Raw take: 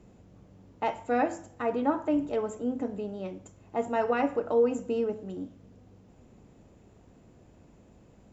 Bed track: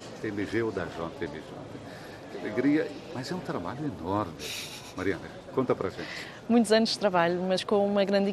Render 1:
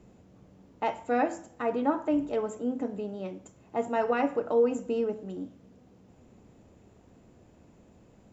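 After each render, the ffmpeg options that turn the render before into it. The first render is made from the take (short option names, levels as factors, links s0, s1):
-af "bandreject=f=50:t=h:w=4,bandreject=f=100:t=h:w=4,bandreject=f=150:t=h:w=4"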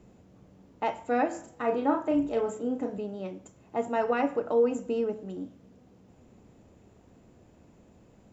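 -filter_complex "[0:a]asettb=1/sr,asplit=3[s0][s1][s2];[s0]atrim=end=1.314[s3];[s1]atrim=start=1.31:end=2.98,asetpts=PTS-STARTPTS,afade=t=in:d=0.004:c=qsin,afade=t=out:st=1.666:d=0.004:c=qsin,asplit=2[s4][s5];[s5]adelay=35,volume=0.562[s6];[s4][s6]amix=inputs=2:normalize=0,atrim=end_sample=73647[s7];[s2]atrim=start=2.976[s8];[s3][s7]acrossfade=d=0.004:c1=hsin:c2=qsin[s9];[s9][s8]acrossfade=d=0.004:c1=qsin:c2=hsin"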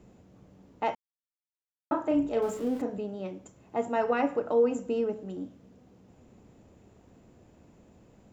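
-filter_complex "[0:a]asettb=1/sr,asplit=3[s0][s1][s2];[s0]atrim=end=2.424[s3];[s1]atrim=start=2.42:end=2.82,asetpts=PTS-STARTPTS,afade=t=in:d=0.004:c=qsin,afade=t=out:st=0.396:d=0.004:c=qsin,aeval=exprs='val(0)+0.5*0.00891*sgn(val(0))':c=same[s4];[s2]atrim=start=2.816[s5];[s3][s4]acrossfade=d=0.004:c1=hsin:c2=qsin[s6];[s6][s5]acrossfade=d=0.004:c1=qsin:c2=hsin,asplit=3[s7][s8][s9];[s7]atrim=end=0.95,asetpts=PTS-STARTPTS,afade=t=out:st=0.946:d=0.004:c=hsin[s10];[s8]atrim=start=0.95:end=1.91,asetpts=PTS-STARTPTS,volume=0[s11];[s9]atrim=start=1.91,asetpts=PTS-STARTPTS,afade=t=in:d=0.004:c=hsin[s12];[s10][s11][s12]concat=n=3:v=0:a=1"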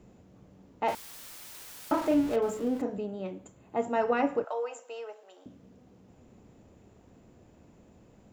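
-filter_complex "[0:a]asettb=1/sr,asplit=3[s0][s1][s2];[s0]atrim=end=0.884[s3];[s1]atrim=start=0.88:end=2.36,asetpts=PTS-STARTPTS,afade=t=in:d=0.004:c=qsin,afade=t=out:st=1.476:d=0.004:c=qsin,aeval=exprs='val(0)+0.5*0.0188*sgn(val(0))':c=same[s4];[s2]atrim=start=2.356[s5];[s3][s4]acrossfade=d=0.004:c1=hsin:c2=qsin[s6];[s6][s5]acrossfade=d=0.004:c1=qsin:c2=hsin,asettb=1/sr,asplit=3[s7][s8][s9];[s7]atrim=end=3.054[s10];[s8]atrim=start=3.05:end=3.8,asetpts=PTS-STARTPTS,afade=t=in:d=0.004:c=qsin,afade=t=out:st=0.746:d=0.004:c=qsin,equalizer=f=5500:w=6.4:g=-11.5[s11];[s9]atrim=start=3.796[s12];[s10][s11]acrossfade=d=0.004:c1=hsin:c2=qsin[s13];[s13][s12]acrossfade=d=0.004:c1=qsin:c2=hsin,asettb=1/sr,asplit=3[s14][s15][s16];[s14]atrim=end=4.444[s17];[s15]atrim=start=4.44:end=5.46,asetpts=PTS-STARTPTS,afade=t=in:d=0.004:c=qsin,afade=t=out:st=1.016:d=0.004:c=qsin,highpass=f=630:w=0.5412,highpass=f=630:w=1.3066[s18];[s16]atrim=start=5.456[s19];[s17][s18]acrossfade=d=0.004:c1=hsin:c2=qsin[s20];[s20][s19]acrossfade=d=0.004:c1=qsin:c2=hsin"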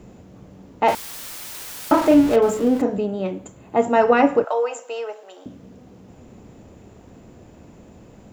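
-af "volume=3.76"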